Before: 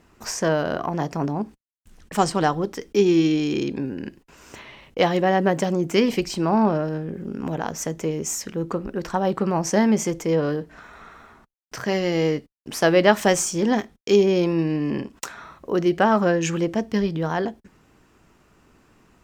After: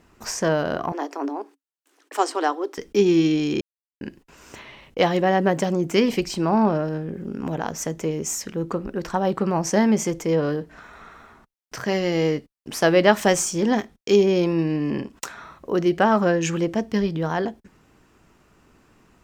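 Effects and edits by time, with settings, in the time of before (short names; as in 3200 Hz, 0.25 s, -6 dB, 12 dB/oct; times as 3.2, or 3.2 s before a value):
0.92–2.78 rippled Chebyshev high-pass 270 Hz, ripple 3 dB
3.61–4.01 mute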